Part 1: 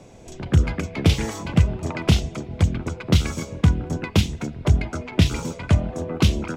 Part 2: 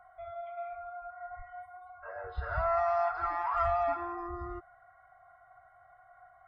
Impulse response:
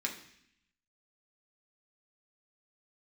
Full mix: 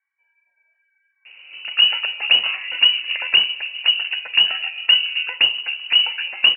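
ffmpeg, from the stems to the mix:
-filter_complex "[0:a]lowpass=1.6k,acrusher=bits=7:mode=log:mix=0:aa=0.000001,adelay=1250,volume=2.5dB,asplit=2[a][b];[b]volume=-11dB[c];[1:a]tiltshelf=f=1.1k:g=-6.5,acompressor=threshold=-41dB:ratio=6,flanger=delay=17:depth=4.1:speed=2.9,volume=-18dB[d];[2:a]atrim=start_sample=2205[e];[c][e]afir=irnorm=-1:irlink=0[f];[a][d][f]amix=inputs=3:normalize=0,lowpass=f=2.6k:t=q:w=0.5098,lowpass=f=2.6k:t=q:w=0.6013,lowpass=f=2.6k:t=q:w=0.9,lowpass=f=2.6k:t=q:w=2.563,afreqshift=-3000"

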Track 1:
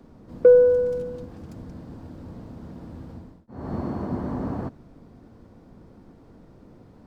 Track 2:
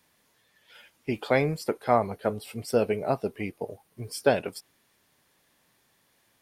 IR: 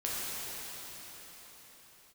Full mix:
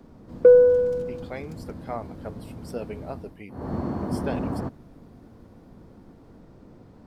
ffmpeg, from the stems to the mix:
-filter_complex "[0:a]volume=0.5dB[a];[1:a]dynaudnorm=f=400:g=7:m=11.5dB,volume=-16.5dB[b];[a][b]amix=inputs=2:normalize=0"

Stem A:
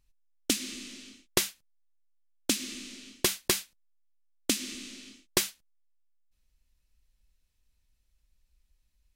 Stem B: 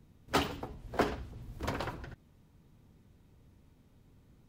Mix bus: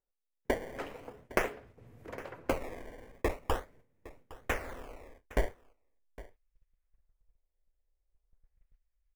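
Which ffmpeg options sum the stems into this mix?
-filter_complex "[0:a]highshelf=f=3.5k:g=4,acrusher=samples=19:mix=1:aa=0.000001:lfo=1:lforange=30.4:lforate=0.42,asubboost=boost=10:cutoff=56,volume=-11.5dB,asplit=2[a][b];[b]volume=-19dB[c];[1:a]highpass=f=71:w=0.5412,highpass=f=71:w=1.3066,acompressor=threshold=-49dB:ratio=2,adelay=450,volume=-5.5dB[d];[c]aecho=0:1:810:1[e];[a][d][e]amix=inputs=3:normalize=0,agate=range=-12dB:threshold=-58dB:ratio=16:detection=peak,equalizer=f=500:t=o:w=1:g=11,equalizer=f=2k:t=o:w=1:g=9,equalizer=f=4k:t=o:w=1:g=-6"

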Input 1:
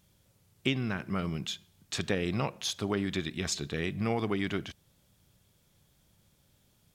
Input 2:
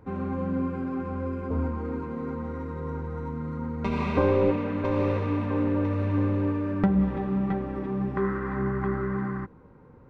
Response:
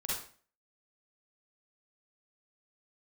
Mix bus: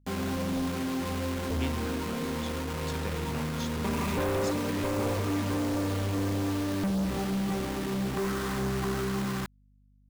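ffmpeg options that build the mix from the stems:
-filter_complex "[0:a]adelay=950,volume=-9.5dB[a];[1:a]acrusher=bits=5:mix=0:aa=0.000001,asoftclip=type=tanh:threshold=-27.5dB,aeval=exprs='val(0)+0.000794*(sin(2*PI*50*n/s)+sin(2*PI*2*50*n/s)/2+sin(2*PI*3*50*n/s)/3+sin(2*PI*4*50*n/s)/4+sin(2*PI*5*50*n/s)/5)':c=same,volume=1.5dB[b];[a][b]amix=inputs=2:normalize=0"

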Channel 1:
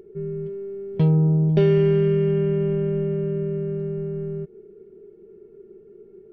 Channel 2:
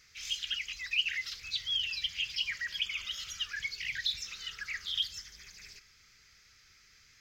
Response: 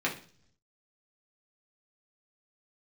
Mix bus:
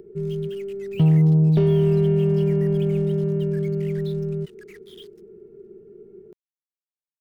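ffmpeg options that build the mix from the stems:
-filter_complex "[0:a]asoftclip=type=tanh:threshold=-13dB,volume=-2dB[a];[1:a]lowpass=f=1.7k:p=1,acrusher=bits=6:mix=0:aa=0.5,volume=-9dB[b];[a][b]amix=inputs=2:normalize=0,equalizer=f=140:w=0.35:g=6,acrossover=split=440|3000[c][d][e];[d]acompressor=threshold=-31dB:ratio=6[f];[c][f][e]amix=inputs=3:normalize=0"

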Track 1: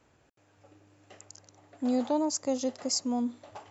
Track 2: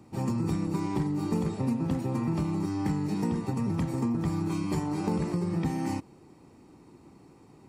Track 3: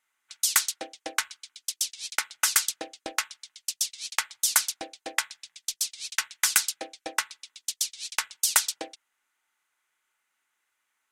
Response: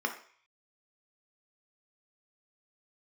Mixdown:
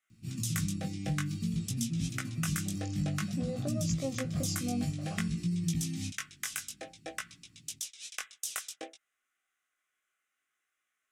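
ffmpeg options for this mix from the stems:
-filter_complex "[0:a]adelay=1550,volume=1.5dB[a];[1:a]firequalizer=gain_entry='entry(170,0);entry(500,-29);entry(2700,1)':delay=0.05:min_phase=1,adelay=100,volume=0dB[b];[2:a]equalizer=f=4.4k:w=5.7:g=-10,volume=-2dB[c];[a][c]amix=inputs=2:normalize=0,highshelf=f=12k:g=-5.5,acompressor=threshold=-30dB:ratio=6,volume=0dB[d];[b][d]amix=inputs=2:normalize=0,asuperstop=centerf=920:order=8:qfactor=3.8,flanger=delay=17.5:depth=3.2:speed=0.54"

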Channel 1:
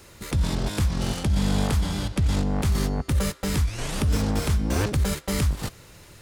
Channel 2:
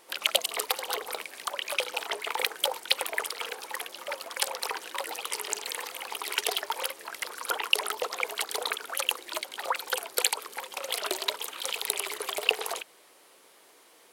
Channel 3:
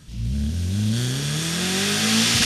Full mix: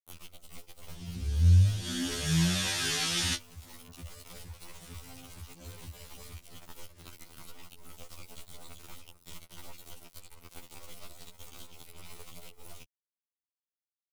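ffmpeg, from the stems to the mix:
-filter_complex "[0:a]acompressor=mode=upward:threshold=-33dB:ratio=2.5,adelay=900,volume=-19dB[a];[1:a]acrusher=bits=3:dc=4:mix=0:aa=0.000001,bandreject=f=1.7k:w=5.2,acompressor=threshold=-35dB:ratio=6,volume=-5dB[b];[2:a]acompressor=threshold=-22dB:ratio=4,flanger=delay=8.7:depth=6.4:regen=40:speed=0.19:shape=sinusoidal,adelay=900,volume=1.5dB[c];[a][b]amix=inputs=2:normalize=0,acrossover=split=520|2400|6200[d][e][f][g];[d]acompressor=threshold=-53dB:ratio=4[h];[e]acompressor=threshold=-59dB:ratio=4[i];[f]acompressor=threshold=-57dB:ratio=4[j];[g]acompressor=threshold=-52dB:ratio=4[k];[h][i][j][k]amix=inputs=4:normalize=0,alimiter=level_in=12.5dB:limit=-24dB:level=0:latency=1:release=307,volume=-12.5dB,volume=0dB[l];[c][l]amix=inputs=2:normalize=0,lowshelf=f=98:g=9.5,acompressor=mode=upward:threshold=-35dB:ratio=2.5,afftfilt=real='re*2*eq(mod(b,4),0)':imag='im*2*eq(mod(b,4),0)':win_size=2048:overlap=0.75"

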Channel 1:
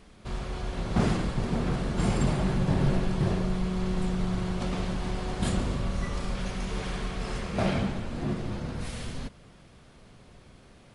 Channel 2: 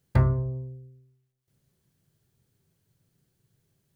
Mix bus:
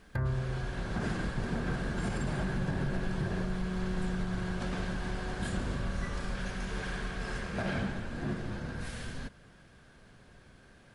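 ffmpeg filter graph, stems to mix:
-filter_complex "[0:a]volume=-4.5dB[a];[1:a]volume=-4dB[b];[a][b]amix=inputs=2:normalize=0,equalizer=f=1.6k:w=6.9:g=13,alimiter=limit=-23dB:level=0:latency=1:release=122"

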